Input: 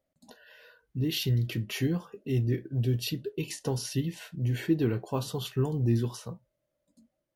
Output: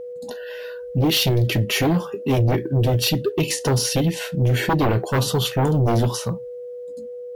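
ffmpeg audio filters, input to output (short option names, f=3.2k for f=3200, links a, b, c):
-af "aeval=exprs='0.188*sin(PI/2*3.55*val(0)/0.188)':c=same,aeval=exprs='val(0)+0.0282*sin(2*PI*490*n/s)':c=same"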